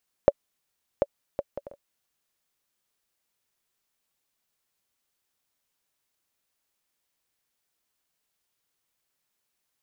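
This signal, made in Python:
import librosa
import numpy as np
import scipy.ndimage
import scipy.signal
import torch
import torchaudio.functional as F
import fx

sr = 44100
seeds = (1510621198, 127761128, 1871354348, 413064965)

y = fx.bouncing_ball(sr, first_gap_s=0.74, ratio=0.5, hz=567.0, decay_ms=41.0, level_db=-4.0)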